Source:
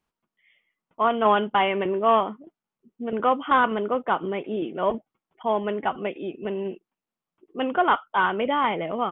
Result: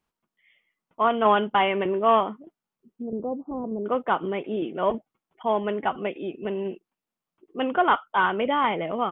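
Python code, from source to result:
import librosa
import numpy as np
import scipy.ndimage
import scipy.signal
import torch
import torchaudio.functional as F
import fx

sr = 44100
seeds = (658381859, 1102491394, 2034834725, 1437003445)

y = fx.gaussian_blur(x, sr, sigma=16.0, at=(3.02, 3.86))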